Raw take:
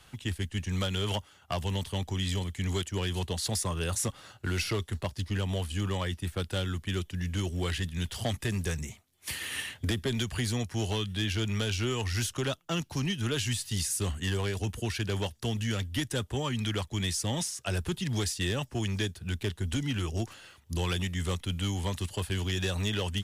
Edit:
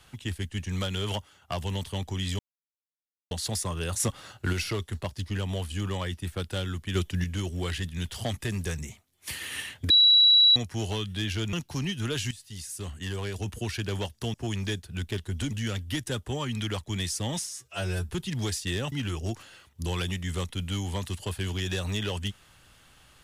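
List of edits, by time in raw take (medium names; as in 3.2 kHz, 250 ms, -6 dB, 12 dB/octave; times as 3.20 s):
2.39–3.31 s: mute
4.00–4.53 s: gain +4 dB
6.95–7.24 s: gain +5.5 dB
9.90–10.56 s: bleep 3.91 kHz -14.5 dBFS
11.53–12.74 s: delete
13.52–14.81 s: fade in, from -15 dB
17.53–17.83 s: stretch 2×
18.66–19.83 s: move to 15.55 s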